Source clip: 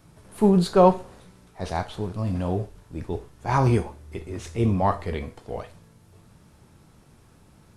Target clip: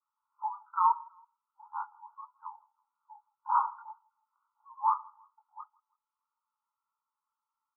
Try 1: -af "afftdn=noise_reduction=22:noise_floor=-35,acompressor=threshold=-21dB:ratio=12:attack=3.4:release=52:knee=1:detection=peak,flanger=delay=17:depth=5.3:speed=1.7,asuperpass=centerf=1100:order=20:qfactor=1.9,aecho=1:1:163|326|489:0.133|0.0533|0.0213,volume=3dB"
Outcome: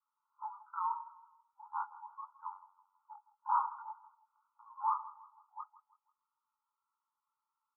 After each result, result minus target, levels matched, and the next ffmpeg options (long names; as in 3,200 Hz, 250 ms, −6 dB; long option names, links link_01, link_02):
downward compressor: peak gain reduction +11.5 dB; echo-to-direct +9 dB
-af "afftdn=noise_reduction=22:noise_floor=-35,flanger=delay=17:depth=5.3:speed=1.7,asuperpass=centerf=1100:order=20:qfactor=1.9,aecho=1:1:163|326|489:0.133|0.0533|0.0213,volume=3dB"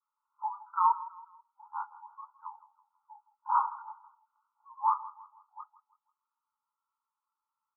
echo-to-direct +9 dB
-af "afftdn=noise_reduction=22:noise_floor=-35,flanger=delay=17:depth=5.3:speed=1.7,asuperpass=centerf=1100:order=20:qfactor=1.9,aecho=1:1:163|326:0.0473|0.0189,volume=3dB"